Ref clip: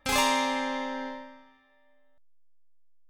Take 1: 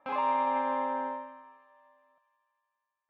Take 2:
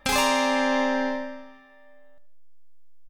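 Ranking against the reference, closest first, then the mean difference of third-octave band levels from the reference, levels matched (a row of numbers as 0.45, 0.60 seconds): 2, 1; 2.5, 8.5 decibels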